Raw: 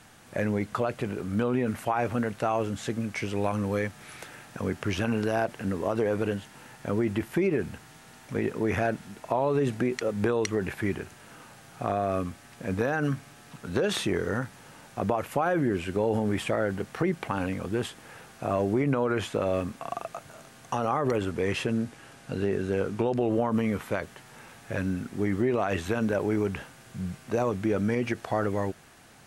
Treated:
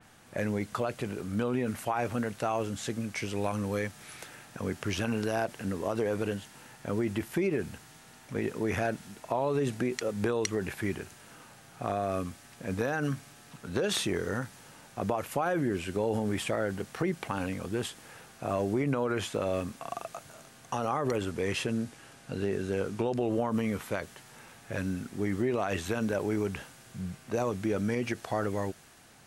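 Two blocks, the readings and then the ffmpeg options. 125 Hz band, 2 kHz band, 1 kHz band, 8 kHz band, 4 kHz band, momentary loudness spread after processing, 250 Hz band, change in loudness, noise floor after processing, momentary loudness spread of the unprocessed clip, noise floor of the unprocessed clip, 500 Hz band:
−3.5 dB, −3.0 dB, −3.5 dB, +2.0 dB, 0.0 dB, 14 LU, −3.5 dB, −3.5 dB, −54 dBFS, 14 LU, −52 dBFS, −3.5 dB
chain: -af "adynamicequalizer=threshold=0.00447:dfrequency=3200:dqfactor=0.7:tfrequency=3200:tqfactor=0.7:attack=5:release=100:ratio=0.375:range=3:mode=boostabove:tftype=highshelf,volume=-3.5dB"

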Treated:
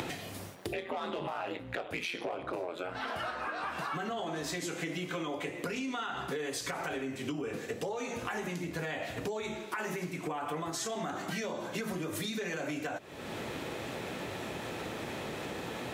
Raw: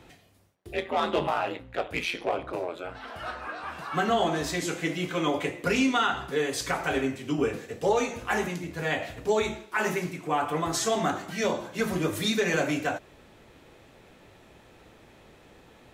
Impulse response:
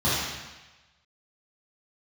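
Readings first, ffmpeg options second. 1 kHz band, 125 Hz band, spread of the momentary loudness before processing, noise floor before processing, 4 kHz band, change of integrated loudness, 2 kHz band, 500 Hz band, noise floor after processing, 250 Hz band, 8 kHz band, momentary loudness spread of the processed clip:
−8.0 dB, −6.0 dB, 9 LU, −55 dBFS, −7.0 dB, −8.5 dB, −7.0 dB, −8.5 dB, −44 dBFS, −7.5 dB, −6.0 dB, 4 LU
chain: -af "highpass=110,acompressor=mode=upward:threshold=-31dB:ratio=2.5,alimiter=limit=-23.5dB:level=0:latency=1:release=96,acompressor=threshold=-38dB:ratio=6,volume=4.5dB"

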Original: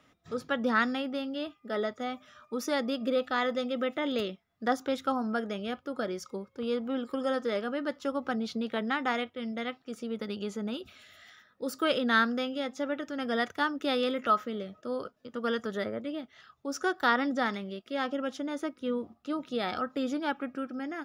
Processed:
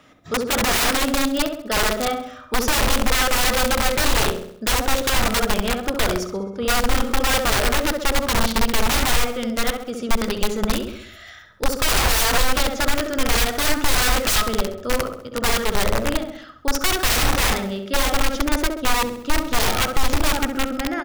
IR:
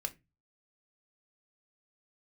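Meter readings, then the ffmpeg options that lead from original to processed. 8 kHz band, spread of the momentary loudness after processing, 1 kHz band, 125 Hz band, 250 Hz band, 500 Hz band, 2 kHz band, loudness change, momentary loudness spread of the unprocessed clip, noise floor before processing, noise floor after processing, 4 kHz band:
+27.0 dB, 8 LU, +9.5 dB, can't be measured, +6.0 dB, +7.0 dB, +11.0 dB, +11.0 dB, 10 LU, −68 dBFS, −41 dBFS, +16.0 dB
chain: -filter_complex "[0:a]asplit=2[link_01][link_02];[link_02]adelay=66,lowpass=frequency=1100:poles=1,volume=-4.5dB,asplit=2[link_03][link_04];[link_04]adelay=66,lowpass=frequency=1100:poles=1,volume=0.47,asplit=2[link_05][link_06];[link_06]adelay=66,lowpass=frequency=1100:poles=1,volume=0.47,asplit=2[link_07][link_08];[link_08]adelay=66,lowpass=frequency=1100:poles=1,volume=0.47,asplit=2[link_09][link_10];[link_10]adelay=66,lowpass=frequency=1100:poles=1,volume=0.47,asplit=2[link_11][link_12];[link_12]adelay=66,lowpass=frequency=1100:poles=1,volume=0.47[link_13];[link_03][link_05][link_07][link_09][link_11][link_13]amix=inputs=6:normalize=0[link_14];[link_01][link_14]amix=inputs=2:normalize=0,aeval=exprs='(mod(20*val(0)+1,2)-1)/20':channel_layout=same,asubboost=boost=6.5:cutoff=80,asplit=2[link_15][link_16];[link_16]aecho=0:1:66|132|198|264|330:0.158|0.0808|0.0412|0.021|0.0107[link_17];[link_15][link_17]amix=inputs=2:normalize=0,alimiter=level_in=19dB:limit=-1dB:release=50:level=0:latency=1,volume=-7.5dB"

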